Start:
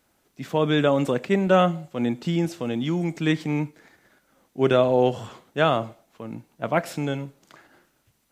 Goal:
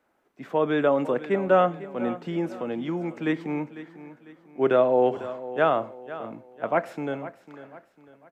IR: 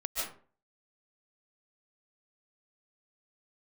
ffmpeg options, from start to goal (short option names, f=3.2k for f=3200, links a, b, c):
-filter_complex "[0:a]acrossover=split=260 2200:gain=0.224 1 0.158[a][b][c];[a][b][c]amix=inputs=3:normalize=0,asplit=2[d][e];[e]aecho=0:1:499|998|1497|1996:0.178|0.0694|0.027|0.0105[f];[d][f]amix=inputs=2:normalize=0"